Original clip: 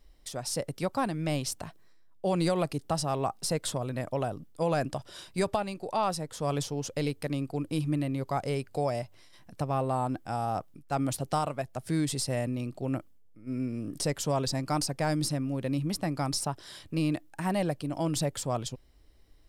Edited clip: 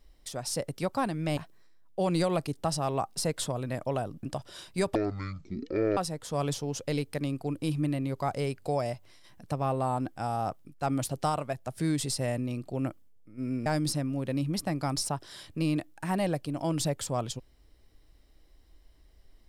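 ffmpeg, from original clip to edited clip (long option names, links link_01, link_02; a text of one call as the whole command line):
ffmpeg -i in.wav -filter_complex "[0:a]asplit=6[link_01][link_02][link_03][link_04][link_05][link_06];[link_01]atrim=end=1.372[link_07];[link_02]atrim=start=1.628:end=4.492[link_08];[link_03]atrim=start=4.828:end=5.554[link_09];[link_04]atrim=start=5.55:end=6.06,asetpts=PTS-STARTPTS,asetrate=22050,aresample=44100[link_10];[link_05]atrim=start=6.056:end=13.752[link_11];[link_06]atrim=start=15.018[link_12];[link_07][link_08]acrossfade=duration=0.004:curve1=hsin:curve2=hsin[link_13];[link_13][link_09]acrossfade=duration=0.004:curve1=hsin:curve2=hsin[link_14];[link_14][link_10]acrossfade=duration=0.004:curve1=hsin:curve2=hsin[link_15];[link_15][link_11]acrossfade=duration=0.004:curve1=hsin:curve2=hsin[link_16];[link_16][link_12]acrossfade=duration=0.004:curve1=hsin:curve2=hsin" out.wav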